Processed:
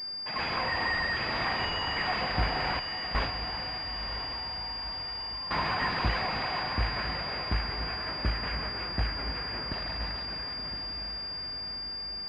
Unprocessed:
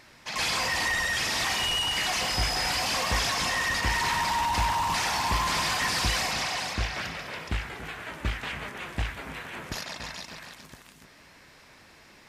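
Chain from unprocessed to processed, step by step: 2.79–5.51 s: gate with hold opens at -14 dBFS; echo that smears into a reverb 990 ms, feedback 53%, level -8 dB; class-D stage that switches slowly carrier 4.8 kHz

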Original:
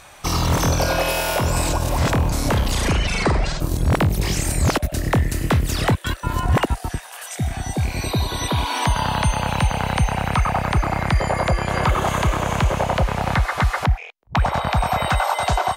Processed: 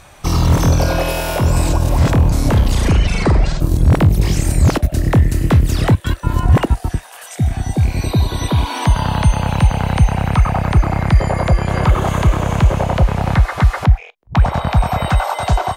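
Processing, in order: bass shelf 410 Hz +9 dB; reverberation, pre-delay 3 ms, DRR 20.5 dB; trim -1 dB

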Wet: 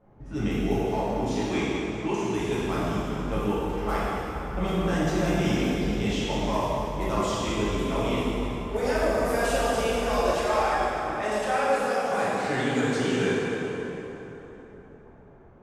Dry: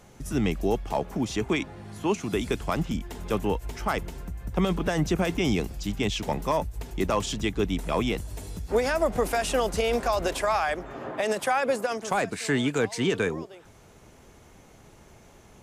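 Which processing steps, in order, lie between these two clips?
level-controlled noise filter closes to 950 Hz, open at -22.5 dBFS; plate-style reverb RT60 3.7 s, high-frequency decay 0.65×, DRR -9.5 dB; trim -9 dB

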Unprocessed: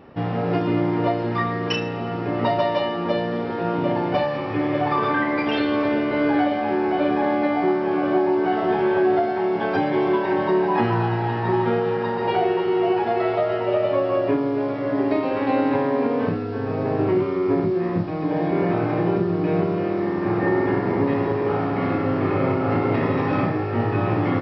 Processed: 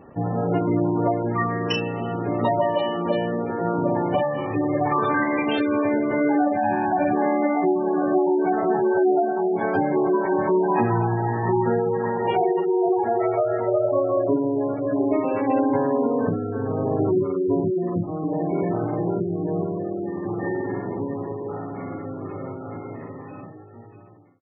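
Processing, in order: fade out at the end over 7.68 s; 6.56–7.13 s: comb 1.2 ms, depth 74%; spectral gate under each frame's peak -20 dB strong

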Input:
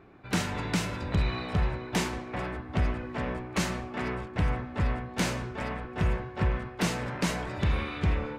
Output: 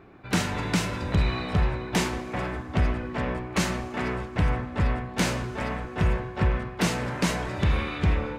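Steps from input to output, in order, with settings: Schroeder reverb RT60 2.7 s, combs from 33 ms, DRR 18.5 dB; trim +3.5 dB

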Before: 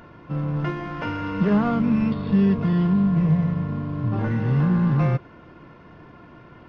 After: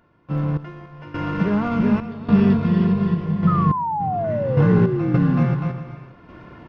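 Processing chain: bouncing-ball echo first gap 380 ms, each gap 0.65×, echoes 5; random-step tremolo 3.5 Hz, depth 90%; painted sound fall, 3.47–5.46 s, 230–1300 Hz -27 dBFS; trim +3.5 dB

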